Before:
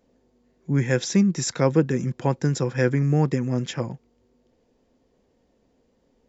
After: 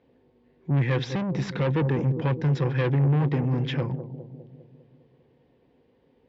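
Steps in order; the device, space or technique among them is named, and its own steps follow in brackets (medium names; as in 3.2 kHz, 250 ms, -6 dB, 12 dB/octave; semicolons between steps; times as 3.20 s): analogue delay pedal into a guitar amplifier (bucket-brigade echo 201 ms, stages 1024, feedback 57%, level -13 dB; valve stage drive 25 dB, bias 0.3; cabinet simulation 77–3500 Hz, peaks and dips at 140 Hz +4 dB, 210 Hz -8 dB, 630 Hz -6 dB, 1.3 kHz -5 dB); trim +5 dB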